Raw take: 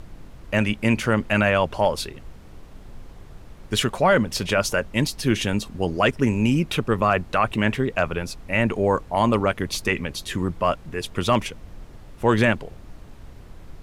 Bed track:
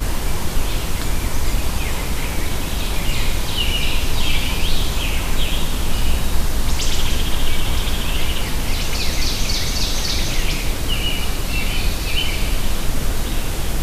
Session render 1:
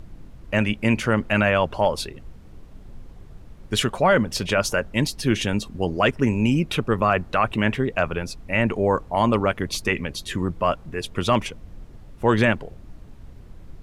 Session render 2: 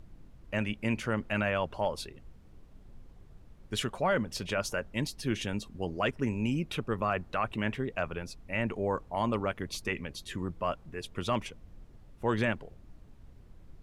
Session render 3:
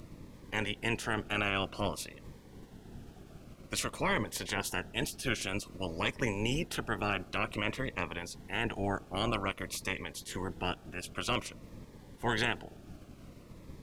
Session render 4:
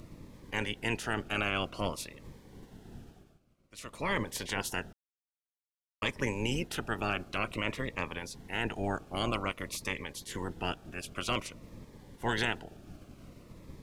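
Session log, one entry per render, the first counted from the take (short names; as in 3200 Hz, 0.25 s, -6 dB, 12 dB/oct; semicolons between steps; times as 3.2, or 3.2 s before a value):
denoiser 6 dB, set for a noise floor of -44 dBFS
gain -10.5 dB
spectral limiter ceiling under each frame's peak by 20 dB; cascading phaser falling 0.52 Hz
2.97–4.17 dip -19 dB, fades 0.43 s; 4.93–6.02 mute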